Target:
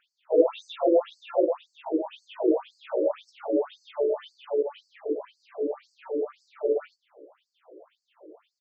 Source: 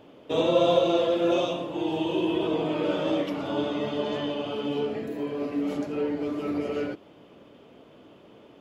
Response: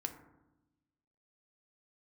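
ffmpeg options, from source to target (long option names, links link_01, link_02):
-filter_complex "[0:a]tiltshelf=frequency=890:gain=8,asplit=2[link_01][link_02];[link_02]adelay=16,volume=-6dB[link_03];[link_01][link_03]amix=inputs=2:normalize=0,afftfilt=real='re*between(b*sr/1024,410*pow(6200/410,0.5+0.5*sin(2*PI*1.9*pts/sr))/1.41,410*pow(6200/410,0.5+0.5*sin(2*PI*1.9*pts/sr))*1.41)':imag='im*between(b*sr/1024,410*pow(6200/410,0.5+0.5*sin(2*PI*1.9*pts/sr))/1.41,410*pow(6200/410,0.5+0.5*sin(2*PI*1.9*pts/sr))*1.41)':win_size=1024:overlap=0.75,volume=1.5dB"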